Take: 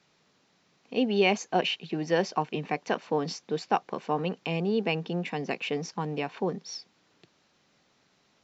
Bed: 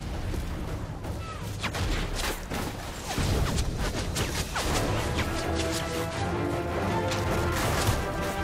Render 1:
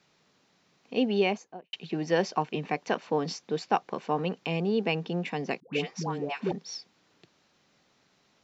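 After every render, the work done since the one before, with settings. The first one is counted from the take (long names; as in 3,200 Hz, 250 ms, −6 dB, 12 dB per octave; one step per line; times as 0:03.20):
0:01.05–0:01.73: fade out and dull
0:05.60–0:06.52: all-pass dispersion highs, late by 131 ms, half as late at 640 Hz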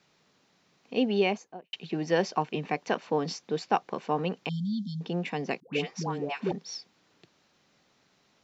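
0:04.49–0:05.01: linear-phase brick-wall band-stop 250–3,100 Hz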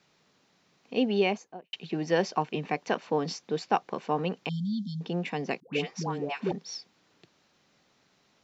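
no processing that can be heard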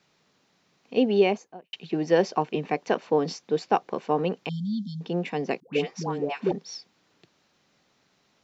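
dynamic equaliser 420 Hz, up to +6 dB, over −37 dBFS, Q 0.78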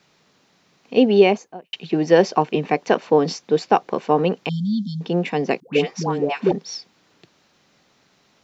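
level +7 dB
brickwall limiter −2 dBFS, peak gain reduction 1.5 dB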